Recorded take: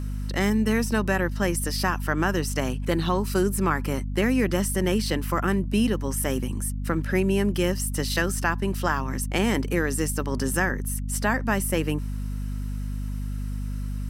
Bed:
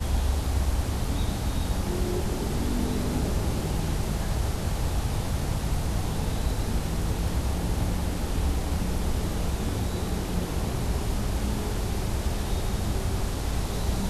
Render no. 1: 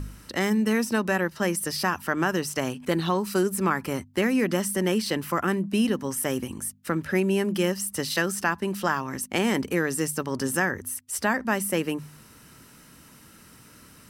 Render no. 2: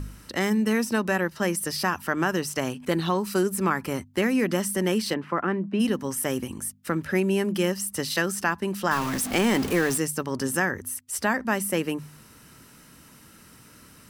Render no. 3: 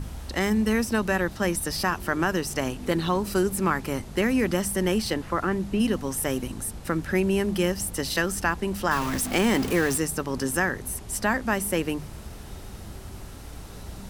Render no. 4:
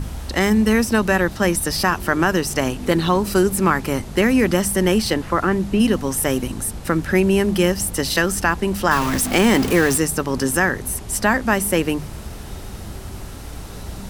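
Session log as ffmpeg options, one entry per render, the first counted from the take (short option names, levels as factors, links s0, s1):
-af "bandreject=f=50:t=h:w=4,bandreject=f=100:t=h:w=4,bandreject=f=150:t=h:w=4,bandreject=f=200:t=h:w=4,bandreject=f=250:t=h:w=4"
-filter_complex "[0:a]asplit=3[s0][s1][s2];[s0]afade=t=out:st=5.13:d=0.02[s3];[s1]highpass=160,lowpass=2100,afade=t=in:st=5.13:d=0.02,afade=t=out:st=5.79:d=0.02[s4];[s2]afade=t=in:st=5.79:d=0.02[s5];[s3][s4][s5]amix=inputs=3:normalize=0,asettb=1/sr,asplit=3[s6][s7][s8];[s6]atrim=end=8.914[s9];[s7]atrim=start=8.91:end=9.98,asetpts=PTS-STARTPTS,afade=t=in:d=0.004:c=qsin,afade=t=out:st=1.066:d=0.004:c=qsin,aeval=exprs='val(0)+0.5*0.0447*sgn(val(0))':c=same[s10];[s8]atrim=start=9.976[s11];[s9][s10]acrossfade=d=0.004:c1=hsin:c2=qsin[s12];[s12][s11]acrossfade=d=0.004:c1=qsin:c2=hsin"
-filter_complex "[1:a]volume=0.237[s0];[0:a][s0]amix=inputs=2:normalize=0"
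-af "volume=2.24,alimiter=limit=0.708:level=0:latency=1"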